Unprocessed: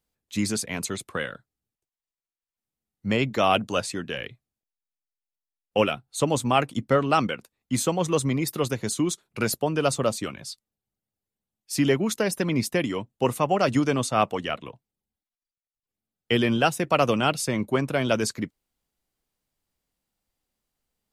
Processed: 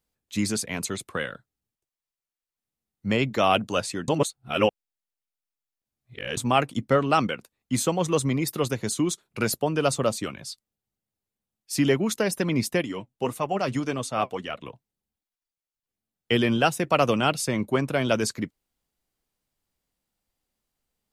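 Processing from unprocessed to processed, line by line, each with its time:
4.08–6.37 s: reverse
12.81–14.61 s: flange 1.7 Hz, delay 1.3 ms, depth 6.8 ms, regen +57%

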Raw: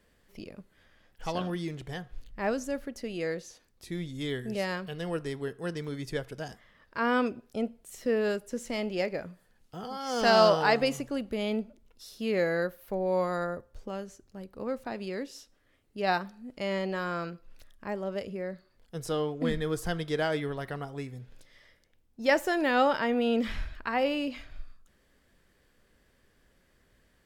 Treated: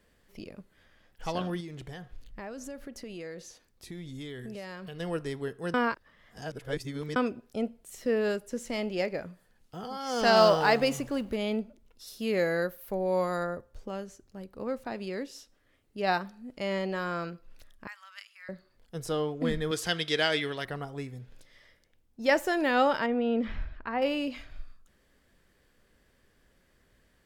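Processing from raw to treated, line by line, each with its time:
1.60–5.00 s: compression, threshold -37 dBFS
5.74–7.16 s: reverse
10.36–11.36 s: companding laws mixed up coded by mu
12.07–13.43 s: treble shelf 7.8 kHz +8 dB
17.87–18.49 s: steep high-pass 1.2 kHz
19.71–20.65 s: frequency weighting D
23.06–24.02 s: tape spacing loss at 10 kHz 27 dB

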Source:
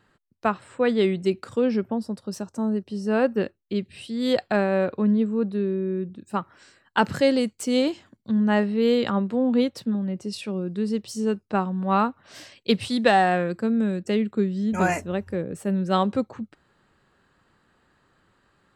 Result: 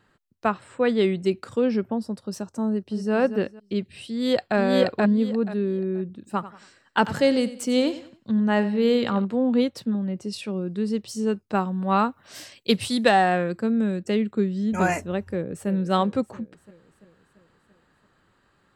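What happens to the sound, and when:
2.68–3.13 s: echo throw 230 ms, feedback 30%, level -10.5 dB
4.09–4.57 s: echo throw 480 ms, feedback 20%, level 0 dB
6.11–9.25 s: feedback delay 92 ms, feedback 36%, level -15 dB
11.50–13.09 s: treble shelf 7.7 kHz +12 dB
15.27–15.68 s: echo throw 340 ms, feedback 60%, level -12.5 dB

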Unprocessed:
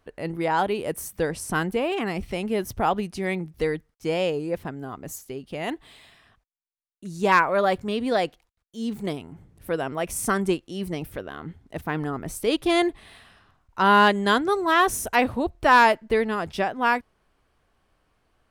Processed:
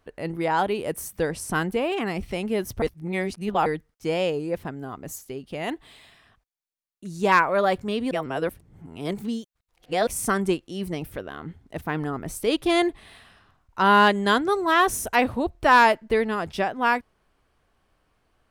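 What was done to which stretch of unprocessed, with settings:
2.82–3.66 s: reverse
8.11–10.07 s: reverse

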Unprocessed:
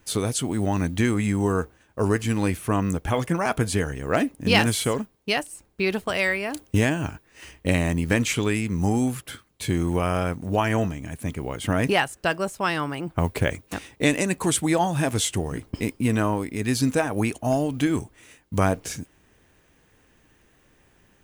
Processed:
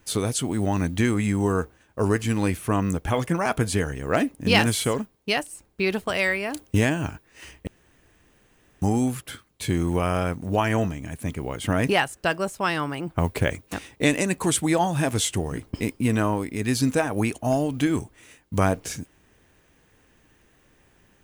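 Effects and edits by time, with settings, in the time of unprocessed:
7.67–8.82 s: room tone

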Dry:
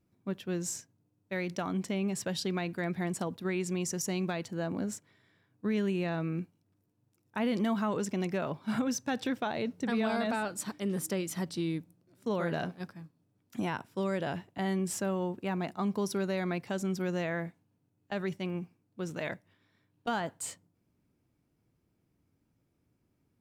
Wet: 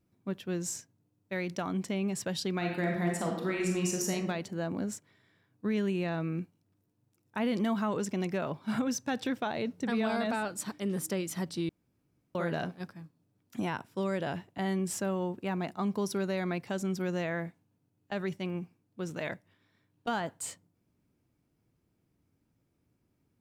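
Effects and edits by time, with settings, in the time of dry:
2.57–4.12 s: reverb throw, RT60 0.98 s, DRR 0 dB
11.69–12.35 s: room tone

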